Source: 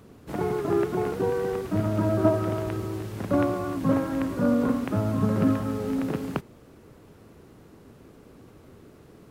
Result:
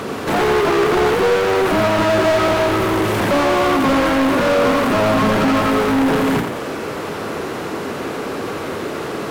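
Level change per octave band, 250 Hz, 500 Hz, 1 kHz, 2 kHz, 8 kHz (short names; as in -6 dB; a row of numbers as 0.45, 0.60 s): +7.5 dB, +12.0 dB, +16.5 dB, +20.0 dB, n/a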